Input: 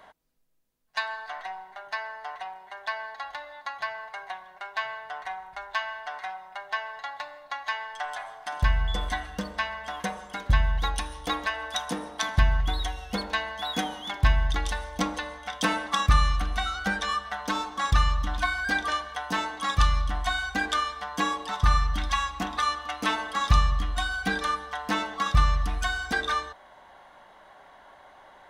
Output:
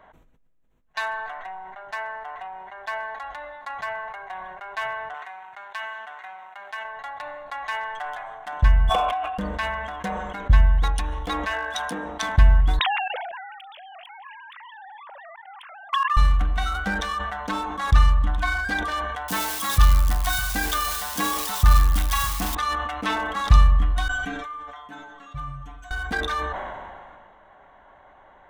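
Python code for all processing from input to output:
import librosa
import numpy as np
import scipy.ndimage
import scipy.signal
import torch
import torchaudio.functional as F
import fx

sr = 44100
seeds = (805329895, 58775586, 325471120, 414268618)

y = fx.chain(x, sr, fx.law_mismatch(coded='A'),
    fx.highpass(hz=1200.0, slope=6),
    fx.band_squash(depth_pct=40), at=(5.14, 6.85))
y = fx.chain(y, sr, fx.vowel_filter(vowel='a'),
    fx.peak_eq(hz=2600.0, db=9.5, octaves=1.9),
    fx.env_flatten(amount_pct=70), at=(8.89, 9.38))
y = fx.low_shelf(y, sr, hz=150.0, db=-11.0, at=(11.51, 12.04), fade=0.02)
y = fx.dmg_tone(y, sr, hz=1600.0, level_db=-39.0, at=(11.51, 12.04), fade=0.02)
y = fx.chain(y, sr, fx.sine_speech(),
    fx.highpass(hz=300.0, slope=6),
    fx.level_steps(step_db=21), at=(12.79, 16.17))
y = fx.chain(y, sr, fx.crossing_spikes(level_db=-20.0),
    fx.echo_single(ms=605, db=-16.5), at=(19.28, 22.55))
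y = fx.chain(y, sr, fx.high_shelf(hz=2800.0, db=7.0),
    fx.stiff_resonator(f0_hz=140.0, decay_s=0.44, stiffness=0.002), at=(24.08, 25.91))
y = fx.wiener(y, sr, points=9)
y = fx.low_shelf(y, sr, hz=99.0, db=8.0)
y = fx.sustainer(y, sr, db_per_s=28.0)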